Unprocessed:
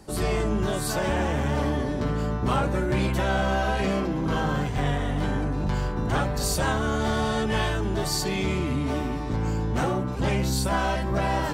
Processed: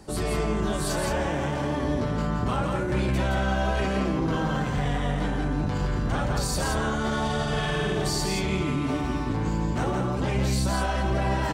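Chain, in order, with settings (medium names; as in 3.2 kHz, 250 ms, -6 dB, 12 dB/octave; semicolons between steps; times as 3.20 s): peaking EQ 13 kHz -8.5 dB 0.27 oct; 7.24–8.02 s: flutter echo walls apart 8.2 m, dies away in 1.2 s; peak limiter -21 dBFS, peak gain reduction 9.5 dB; delay 169 ms -4 dB; trim +1 dB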